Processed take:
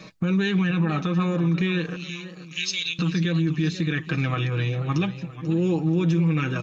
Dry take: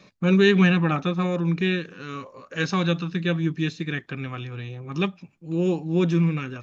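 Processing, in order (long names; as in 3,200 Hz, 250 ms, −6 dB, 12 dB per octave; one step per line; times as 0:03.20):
0:01.96–0:02.99: Butterworth high-pass 2,300 Hz 48 dB per octave
downward compressor 4 to 1, threshold −26 dBFS, peak gain reduction 11 dB
comb filter 6.3 ms, depth 52%
brickwall limiter −23.5 dBFS, peak gain reduction 8 dB
feedback echo with a swinging delay time 485 ms, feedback 46%, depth 122 cents, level −14.5 dB
level +8 dB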